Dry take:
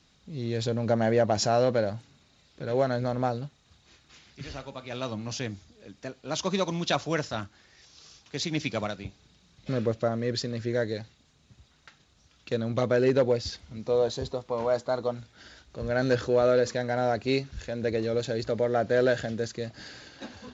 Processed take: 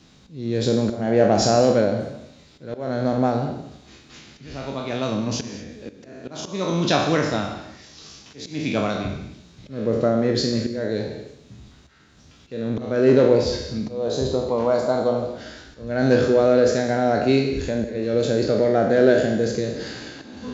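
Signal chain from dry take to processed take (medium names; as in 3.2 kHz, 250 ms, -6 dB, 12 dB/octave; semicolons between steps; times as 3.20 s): spectral sustain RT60 0.68 s; peaking EQ 250 Hz +8 dB 2 oct; in parallel at 0 dB: compression, threshold -32 dBFS, peak gain reduction 18.5 dB; on the sum: slow attack 320 ms; gated-style reverb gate 250 ms flat, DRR 9 dB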